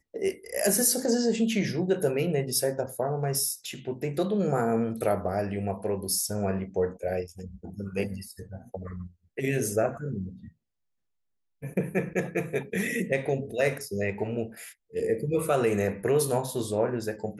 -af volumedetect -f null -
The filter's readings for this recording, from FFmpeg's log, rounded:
mean_volume: -28.9 dB
max_volume: -10.0 dB